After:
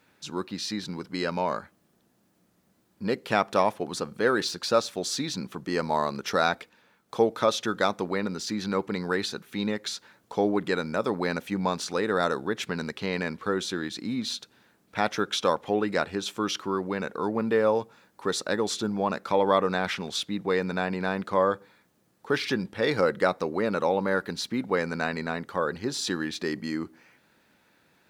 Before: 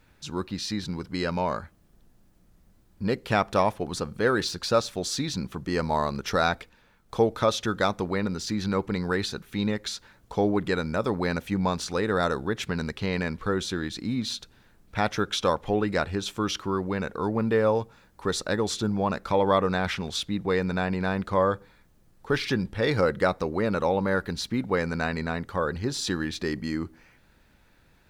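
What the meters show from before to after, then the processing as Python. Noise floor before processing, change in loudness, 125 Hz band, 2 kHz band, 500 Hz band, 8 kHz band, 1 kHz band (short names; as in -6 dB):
-60 dBFS, -0.5 dB, -6.0 dB, 0.0 dB, 0.0 dB, 0.0 dB, 0.0 dB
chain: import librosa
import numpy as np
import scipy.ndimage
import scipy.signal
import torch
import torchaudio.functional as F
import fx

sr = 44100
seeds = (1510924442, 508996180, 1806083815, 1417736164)

y = scipy.signal.sosfilt(scipy.signal.butter(2, 190.0, 'highpass', fs=sr, output='sos'), x)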